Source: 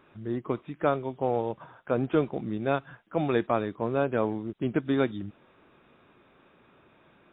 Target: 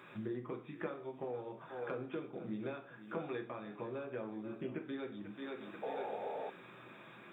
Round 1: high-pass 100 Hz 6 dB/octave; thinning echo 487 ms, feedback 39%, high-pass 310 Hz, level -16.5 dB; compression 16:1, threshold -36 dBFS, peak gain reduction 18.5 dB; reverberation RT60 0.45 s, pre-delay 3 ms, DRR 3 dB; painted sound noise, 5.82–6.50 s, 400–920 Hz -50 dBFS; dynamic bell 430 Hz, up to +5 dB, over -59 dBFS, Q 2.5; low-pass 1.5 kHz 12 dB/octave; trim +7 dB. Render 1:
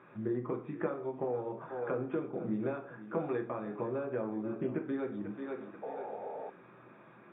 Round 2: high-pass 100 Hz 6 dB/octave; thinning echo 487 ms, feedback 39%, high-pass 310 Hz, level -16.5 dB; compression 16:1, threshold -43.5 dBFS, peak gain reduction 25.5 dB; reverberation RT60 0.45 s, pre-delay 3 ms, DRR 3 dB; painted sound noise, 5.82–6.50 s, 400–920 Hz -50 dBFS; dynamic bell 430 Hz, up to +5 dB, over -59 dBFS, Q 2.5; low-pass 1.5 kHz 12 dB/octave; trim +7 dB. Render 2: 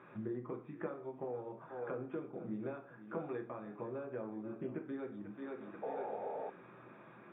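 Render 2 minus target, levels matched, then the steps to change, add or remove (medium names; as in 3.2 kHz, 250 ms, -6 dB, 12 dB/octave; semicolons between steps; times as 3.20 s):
2 kHz band -4.0 dB
remove: low-pass 1.5 kHz 12 dB/octave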